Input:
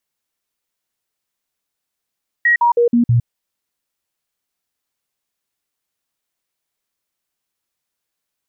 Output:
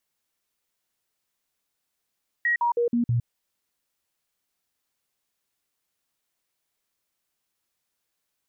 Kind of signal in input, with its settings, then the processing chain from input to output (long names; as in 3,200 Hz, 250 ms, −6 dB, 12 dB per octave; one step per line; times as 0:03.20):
stepped sweep 1,900 Hz down, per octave 1, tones 5, 0.11 s, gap 0.05 s −9.5 dBFS
dynamic equaliser 670 Hz, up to −7 dB, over −29 dBFS, Q 1.2
brickwall limiter −19.5 dBFS